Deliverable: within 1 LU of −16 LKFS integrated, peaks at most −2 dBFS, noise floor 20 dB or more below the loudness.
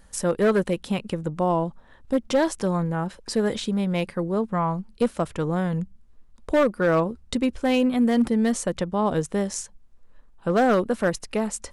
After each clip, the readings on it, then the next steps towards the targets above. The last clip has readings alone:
share of clipped samples 1.0%; peaks flattened at −14.0 dBFS; integrated loudness −24.5 LKFS; sample peak −14.0 dBFS; target loudness −16.0 LKFS
→ clipped peaks rebuilt −14 dBFS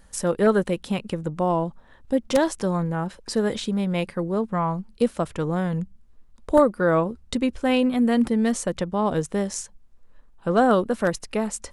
share of clipped samples 0.0%; integrated loudness −24.0 LKFS; sample peak −5.0 dBFS; target loudness −16.0 LKFS
→ level +8 dB
brickwall limiter −2 dBFS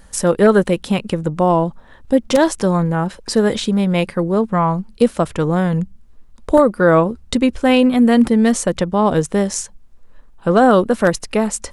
integrated loudness −16.5 LKFS; sample peak −2.0 dBFS; background noise floor −45 dBFS

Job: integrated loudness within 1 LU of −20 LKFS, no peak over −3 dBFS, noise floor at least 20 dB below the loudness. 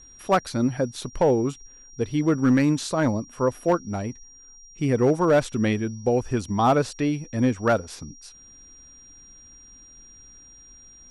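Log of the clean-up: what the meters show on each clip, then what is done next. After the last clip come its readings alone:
share of clipped samples 0.4%; peaks flattened at −12.5 dBFS; interfering tone 5,700 Hz; level of the tone −47 dBFS; integrated loudness −23.5 LKFS; sample peak −12.5 dBFS; target loudness −20.0 LKFS
→ clipped peaks rebuilt −12.5 dBFS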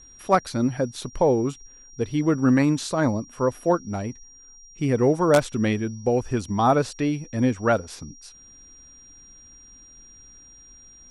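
share of clipped samples 0.0%; interfering tone 5,700 Hz; level of the tone −47 dBFS
→ notch filter 5,700 Hz, Q 30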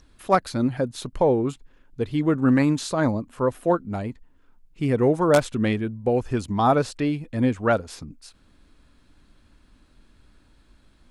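interfering tone none found; integrated loudness −23.0 LKFS; sample peak −3.5 dBFS; target loudness −20.0 LKFS
→ level +3 dB
brickwall limiter −3 dBFS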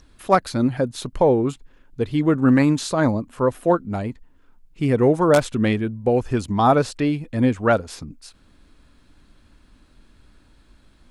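integrated loudness −20.5 LKFS; sample peak −3.0 dBFS; background noise floor −55 dBFS

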